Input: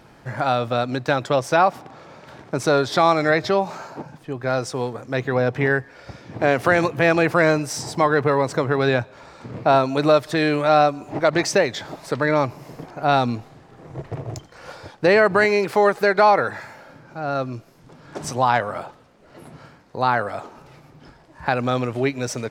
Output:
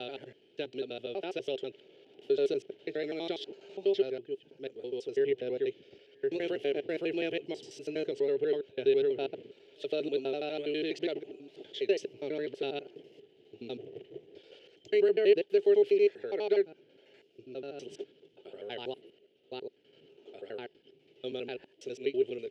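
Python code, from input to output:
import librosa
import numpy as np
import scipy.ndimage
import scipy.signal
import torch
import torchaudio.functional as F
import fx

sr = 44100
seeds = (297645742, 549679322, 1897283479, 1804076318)

y = fx.block_reorder(x, sr, ms=82.0, group=7)
y = fx.double_bandpass(y, sr, hz=1100.0, octaves=2.9)
y = F.gain(torch.from_numpy(y), -2.0).numpy()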